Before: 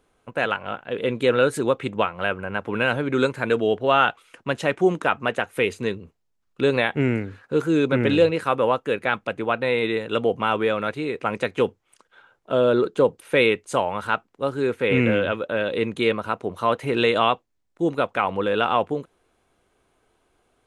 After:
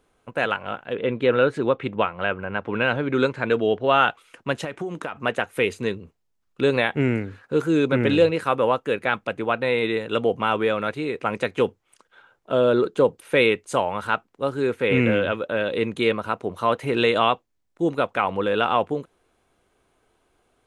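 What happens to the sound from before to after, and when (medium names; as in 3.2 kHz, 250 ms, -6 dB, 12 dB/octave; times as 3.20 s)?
0.94–3.92 s: low-pass 2.9 kHz -> 5.9 kHz
4.64–5.16 s: compression 12:1, threshold -25 dBFS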